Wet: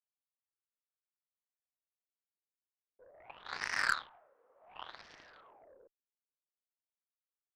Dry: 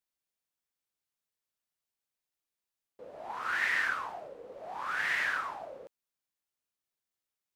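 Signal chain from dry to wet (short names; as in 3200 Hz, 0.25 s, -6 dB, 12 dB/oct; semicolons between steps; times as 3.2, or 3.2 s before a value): Wiener smoothing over 9 samples; wah 0.3 Hz 400–1400 Hz, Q 2.2; added harmonics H 3 -21 dB, 6 -24 dB, 7 -18 dB, 8 -27 dB, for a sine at -21.5 dBFS; in parallel at -5.5 dB: overloaded stage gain 32.5 dB; on the sum: gain +4 dB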